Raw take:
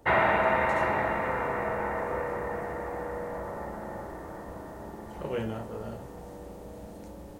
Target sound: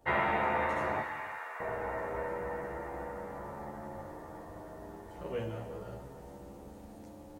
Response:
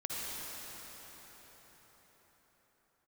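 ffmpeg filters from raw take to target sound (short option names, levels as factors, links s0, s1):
-filter_complex "[0:a]asettb=1/sr,asplit=3[s0][s1][s2];[s0]atrim=end=1.014[s3];[s1]atrim=start=1.01:end=1.6,asetpts=PTS-STARTPTS,afade=t=in:d=0.004:c=qsin,afade=t=out:st=0.586:d=0.004:c=qsin,highpass=1200[s4];[s2]atrim=start=1.596[s5];[s3][s4]acrossfade=d=0.004:c1=hsin:c2=qsin[s6];[s6][s5]acrossfade=d=0.004:c1=qsin:c2=hsin,asplit=2[s7][s8];[1:a]atrim=start_sample=2205,afade=t=out:st=0.41:d=0.01,atrim=end_sample=18522[s9];[s8][s9]afir=irnorm=-1:irlink=0,volume=0.376[s10];[s7][s10]amix=inputs=2:normalize=0,asplit=2[s11][s12];[s12]adelay=11.5,afreqshift=0.3[s13];[s11][s13]amix=inputs=2:normalize=1,volume=0.562"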